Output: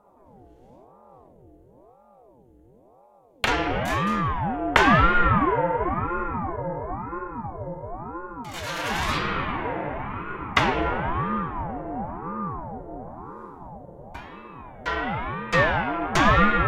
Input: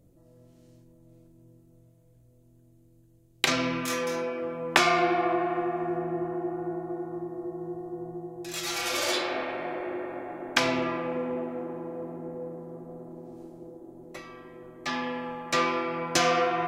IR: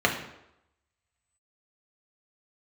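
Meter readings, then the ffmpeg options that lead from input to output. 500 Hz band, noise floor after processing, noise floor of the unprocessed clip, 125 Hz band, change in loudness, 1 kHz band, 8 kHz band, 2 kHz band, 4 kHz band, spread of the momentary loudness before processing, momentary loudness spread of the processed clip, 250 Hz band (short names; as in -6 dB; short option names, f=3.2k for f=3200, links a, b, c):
+1.0 dB, -55 dBFS, -59 dBFS, +12.5 dB, +4.5 dB, +6.5 dB, -6.5 dB, +6.0 dB, -1.0 dB, 20 LU, 21 LU, +3.5 dB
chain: -filter_complex "[0:a]highshelf=f=3.5k:t=q:w=1.5:g=-7,bandreject=f=3.6k:w=16,asplit=2[a][b];[1:a]atrim=start_sample=2205[c];[b][c]afir=irnorm=-1:irlink=0,volume=-16dB[d];[a][d]amix=inputs=2:normalize=0,aeval=exprs='val(0)*sin(2*PI*450*n/s+450*0.6/0.97*sin(2*PI*0.97*n/s))':c=same,volume=3dB"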